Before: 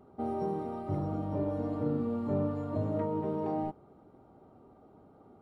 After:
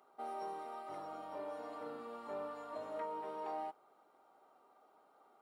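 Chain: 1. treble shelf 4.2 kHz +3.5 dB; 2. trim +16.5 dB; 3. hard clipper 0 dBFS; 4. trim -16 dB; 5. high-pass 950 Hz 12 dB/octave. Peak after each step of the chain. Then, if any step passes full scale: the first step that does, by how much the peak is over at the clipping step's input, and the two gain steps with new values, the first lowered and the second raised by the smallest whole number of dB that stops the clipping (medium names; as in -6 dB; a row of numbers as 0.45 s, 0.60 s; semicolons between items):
-20.0 dBFS, -3.5 dBFS, -3.5 dBFS, -19.5 dBFS, -31.0 dBFS; nothing clips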